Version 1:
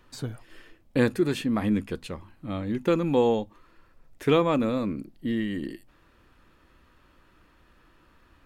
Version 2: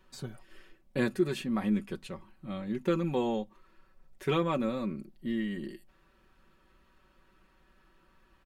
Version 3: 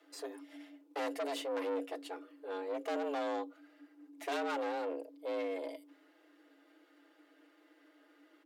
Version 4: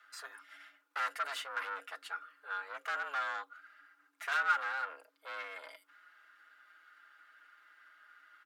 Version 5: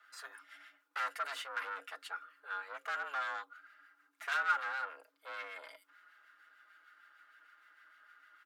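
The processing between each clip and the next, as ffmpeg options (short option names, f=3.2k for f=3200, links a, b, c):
-af "aecho=1:1:5.3:0.68,volume=-7dB"
-af "aeval=exprs='(tanh(56.2*val(0)+0.55)-tanh(0.55))/56.2':c=same,afreqshift=280,volume=1dB"
-af "highpass=f=1.4k:t=q:w=6"
-filter_complex "[0:a]acrossover=split=1300[a][b];[a]aeval=exprs='val(0)*(1-0.5/2+0.5/2*cos(2*PI*6.6*n/s))':c=same[c];[b]aeval=exprs='val(0)*(1-0.5/2-0.5/2*cos(2*PI*6.6*n/s))':c=same[d];[c][d]amix=inputs=2:normalize=0,volume=1dB"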